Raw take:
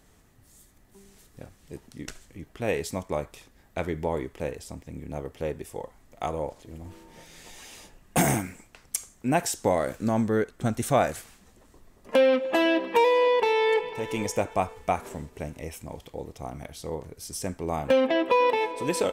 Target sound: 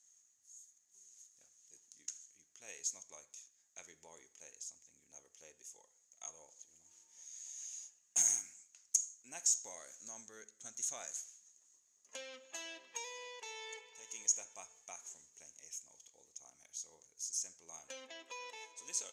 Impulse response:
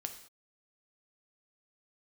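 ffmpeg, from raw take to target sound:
-filter_complex "[0:a]bandpass=f=6.6k:t=q:w=18:csg=0,asplit=2[a][b];[1:a]atrim=start_sample=2205,lowpass=4.4k,lowshelf=f=350:g=10.5[c];[b][c]afir=irnorm=-1:irlink=0,volume=-7dB[d];[a][d]amix=inputs=2:normalize=0,volume=12dB"

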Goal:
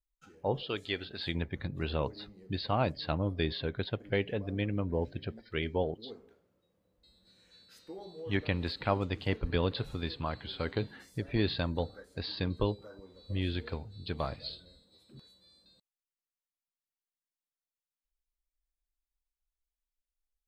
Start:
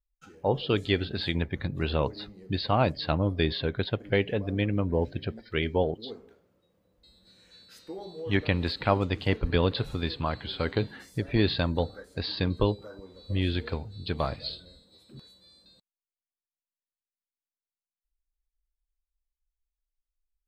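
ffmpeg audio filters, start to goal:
-filter_complex "[0:a]asettb=1/sr,asplit=3[a][b][c];[a]atrim=end=0.634[d];[b]atrim=start=0.63:end=1.27,asetpts=PTS-STARTPTS,afade=t=in:d=0.004:c=qsin,afade=t=out:st=0.636:d=0.004:c=qsin,lowshelf=f=350:g=-11[e];[c]atrim=start=1.266[f];[d][e]acrossfade=d=0.004:c1=hsin:c2=qsin[g];[g][f]acrossfade=d=0.004:c1=qsin:c2=hsin,volume=-5.5dB"

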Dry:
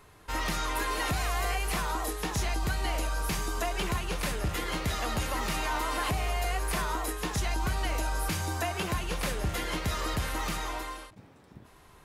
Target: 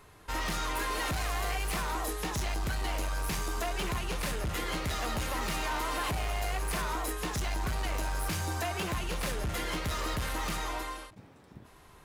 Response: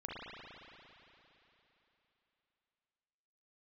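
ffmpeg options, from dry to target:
-af "asoftclip=type=hard:threshold=-29dB"

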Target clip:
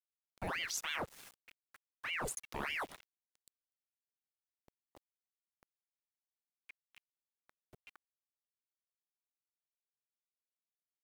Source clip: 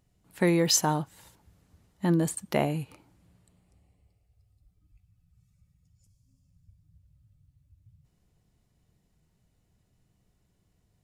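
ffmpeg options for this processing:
-af "areverse,acompressor=threshold=-38dB:ratio=8,areverse,afreqshift=59,aeval=exprs='val(0)*gte(abs(val(0)),0.00251)':c=same,aeval=exprs='val(0)*sin(2*PI*1400*n/s+1400*0.85/3.3*sin(2*PI*3.3*n/s))':c=same,volume=3.5dB"

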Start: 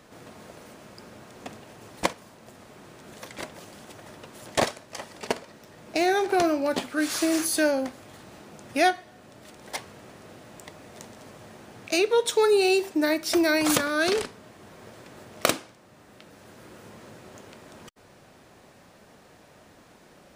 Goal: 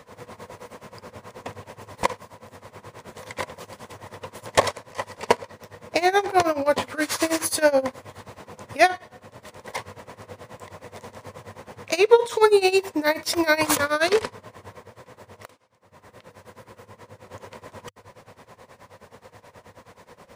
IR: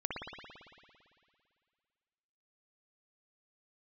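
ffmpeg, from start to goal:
-filter_complex "[0:a]equalizer=f=100:t=o:w=0.33:g=11,equalizer=f=315:t=o:w=0.33:g=-6,equalizer=f=500:t=o:w=0.33:g=9,equalizer=f=1k:t=o:w=0.33:g=11,equalizer=f=2k:t=o:w=0.33:g=5,asettb=1/sr,asplit=3[a][b][c];[a]atrim=end=14.774[d];[b]atrim=start=14.77:end=17.27,asetpts=PTS-STARTPTS,afade=t=in:d=0.004:c=qsin,afade=t=out:st=2.496:d=0.004:c=qsin,acompressor=threshold=-44dB:ratio=12[e];[c]atrim=start=17.266[f];[d][e]acrossfade=d=0.004:c1=hsin:c2=qsin[g];[g][f]acrossfade=d=0.004:c1=qsin:c2=hsin,tremolo=f=9.4:d=0.89,volume=5dB"

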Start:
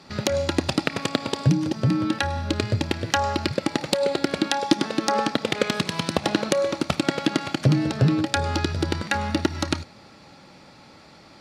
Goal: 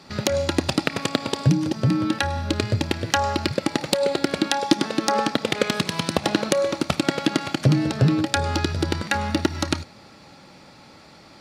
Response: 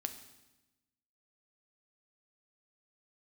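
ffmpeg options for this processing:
-af "highshelf=f=11k:g=6,volume=1dB"

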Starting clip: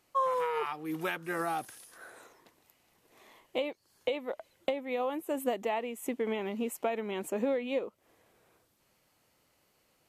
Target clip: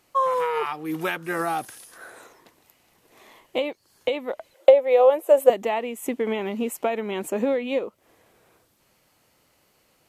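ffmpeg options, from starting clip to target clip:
-filter_complex "[0:a]asettb=1/sr,asplit=3[a][b][c];[a]atrim=end=4.544[d];[b]atrim=start=4.54:end=5.5,asetpts=PTS-STARTPTS,afade=t=in:d=0.004:c=qsin,afade=t=out:st=0.956:d=0.004:c=qsin,highpass=f=550:t=q:w=4.8[e];[c]atrim=start=5.496[f];[d][e]acrossfade=d=0.004:c1=hsin:c2=qsin[g];[g][f]acrossfade=d=0.004:c1=qsin:c2=hsin,volume=7dB"

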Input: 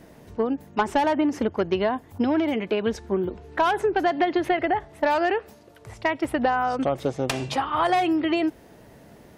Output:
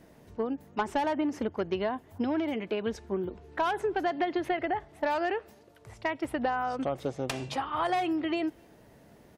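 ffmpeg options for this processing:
-filter_complex "[0:a]asplit=2[a][b];[b]adelay=250,highpass=300,lowpass=3.4k,asoftclip=type=hard:threshold=-22dB,volume=-29dB[c];[a][c]amix=inputs=2:normalize=0,volume=-7dB"

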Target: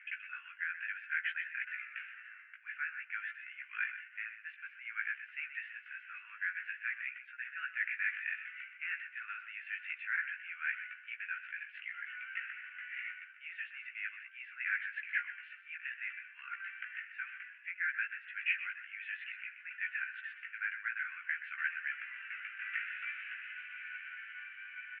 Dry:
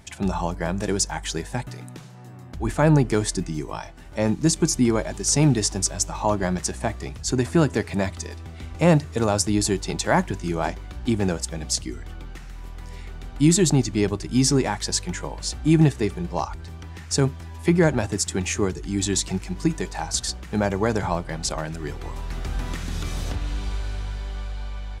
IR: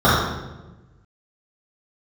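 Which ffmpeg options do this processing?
-af "flanger=delay=15.5:depth=2.4:speed=0.55,areverse,acompressor=threshold=-37dB:ratio=4,areverse,asuperpass=centerf=2000:order=12:qfactor=1.5,aemphasis=mode=reproduction:type=50fm,aecho=1:1:126:0.266,volume=14dB"

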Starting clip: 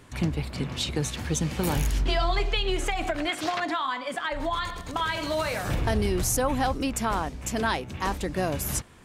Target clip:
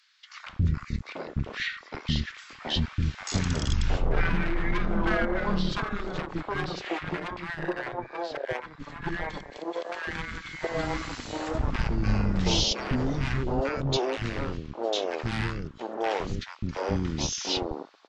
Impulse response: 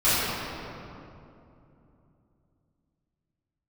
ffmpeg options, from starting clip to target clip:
-filter_complex "[0:a]acrossover=split=2700[a][b];[a]acrusher=bits=3:mix=0:aa=0.5[c];[c][b]amix=inputs=2:normalize=0,acrossover=split=630|2200[d][e][f];[d]adelay=80[g];[e]adelay=360[h];[g][h][f]amix=inputs=3:normalize=0,asetrate=22050,aresample=44100"

